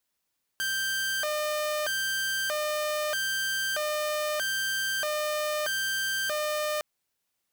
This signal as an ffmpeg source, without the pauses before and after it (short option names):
-f lavfi -i "aevalsrc='0.0596*(2*mod((1087.5*t+482.5/0.79*(0.5-abs(mod(0.79*t,1)-0.5))),1)-1)':d=6.21:s=44100"